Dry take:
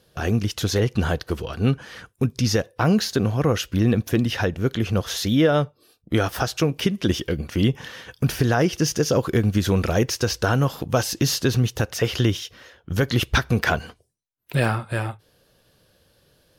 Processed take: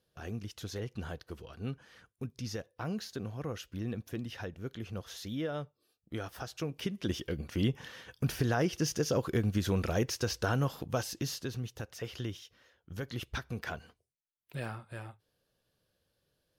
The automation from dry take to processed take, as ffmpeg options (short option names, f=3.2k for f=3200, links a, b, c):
-af "volume=-10dB,afade=t=in:st=6.41:d=1.11:silence=0.398107,afade=t=out:st=10.69:d=0.82:silence=0.398107"